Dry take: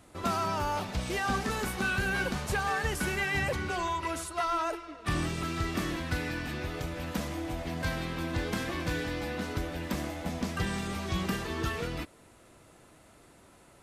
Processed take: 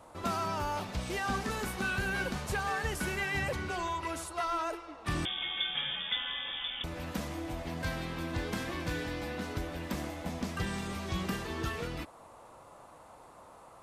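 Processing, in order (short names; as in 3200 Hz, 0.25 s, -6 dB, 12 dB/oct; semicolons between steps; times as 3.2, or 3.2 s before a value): band noise 470–1200 Hz -52 dBFS; 5.25–6.84 inverted band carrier 3500 Hz; gain -3 dB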